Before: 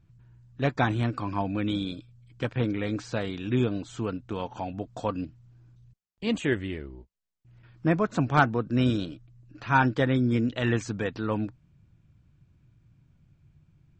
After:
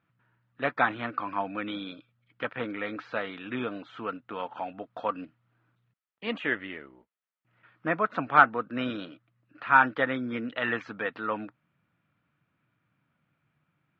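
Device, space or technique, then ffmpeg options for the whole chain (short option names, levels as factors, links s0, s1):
phone earpiece: -af "highpass=340,equalizer=f=370:t=q:w=4:g=-8,equalizer=f=1300:t=q:w=4:g=8,equalizer=f=1900:t=q:w=4:g=4,lowpass=f=3300:w=0.5412,lowpass=f=3300:w=1.3066"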